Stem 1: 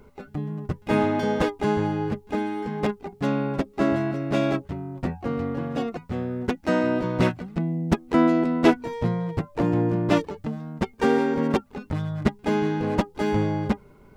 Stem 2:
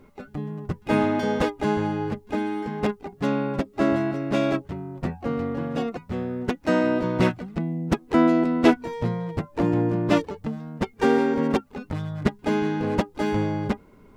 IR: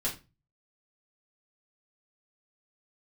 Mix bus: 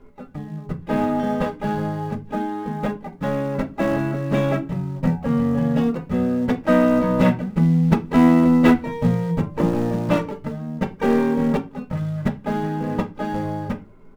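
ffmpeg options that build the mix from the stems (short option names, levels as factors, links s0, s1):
-filter_complex "[0:a]lowpass=f=4300:w=0.5412,lowpass=f=4300:w=1.3066,flanger=delay=2.9:depth=2.7:regen=-40:speed=0.29:shape=triangular,acrusher=bits=5:mode=log:mix=0:aa=0.000001,volume=0.841,asplit=2[s0][s1];[s1]volume=0.15[s2];[1:a]equalizer=f=3900:w=1.5:g=-8,asoftclip=type=tanh:threshold=0.126,volume=-1,adelay=2.9,volume=0.501,asplit=2[s3][s4];[s4]volume=0.668[s5];[2:a]atrim=start_sample=2205[s6];[s2][s5]amix=inputs=2:normalize=0[s7];[s7][s6]afir=irnorm=-1:irlink=0[s8];[s0][s3][s8]amix=inputs=3:normalize=0,highshelf=f=6500:g=-9,dynaudnorm=f=220:g=31:m=2.11"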